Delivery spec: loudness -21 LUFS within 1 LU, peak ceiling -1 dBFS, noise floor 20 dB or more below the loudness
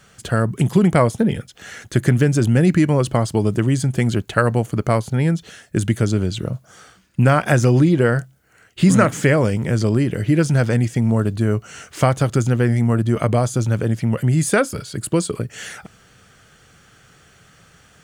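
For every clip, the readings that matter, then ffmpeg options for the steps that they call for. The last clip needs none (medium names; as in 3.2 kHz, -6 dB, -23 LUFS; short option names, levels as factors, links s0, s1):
loudness -18.5 LUFS; peak level -1.5 dBFS; loudness target -21.0 LUFS
-> -af "volume=0.75"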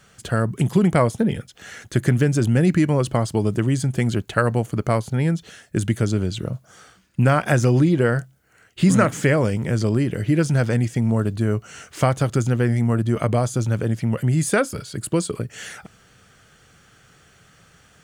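loudness -21.0 LUFS; peak level -4.0 dBFS; noise floor -55 dBFS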